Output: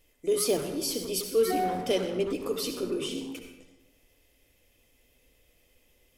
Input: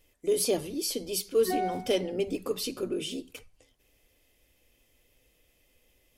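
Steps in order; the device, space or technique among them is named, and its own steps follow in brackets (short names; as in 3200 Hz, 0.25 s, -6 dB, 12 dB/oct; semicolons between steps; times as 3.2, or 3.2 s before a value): saturated reverb return (on a send at -3 dB: reverb RT60 0.85 s, pre-delay 61 ms + soft clip -29.5 dBFS, distortion -5 dB)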